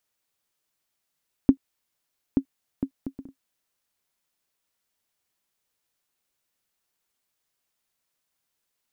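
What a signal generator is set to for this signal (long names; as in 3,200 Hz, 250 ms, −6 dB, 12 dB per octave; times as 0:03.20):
bouncing ball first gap 0.88 s, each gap 0.52, 270 Hz, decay 82 ms −4.5 dBFS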